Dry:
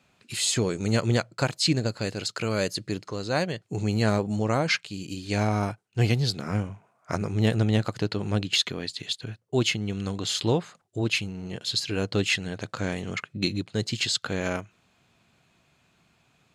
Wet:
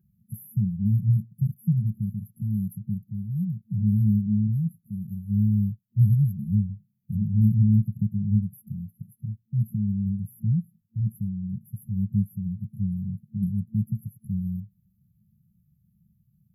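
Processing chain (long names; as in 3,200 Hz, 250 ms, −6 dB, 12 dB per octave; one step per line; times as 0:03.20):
brick-wall band-stop 220–11,000 Hz
hollow resonant body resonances 370/1,600 Hz, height 15 dB, ringing for 60 ms
level +5 dB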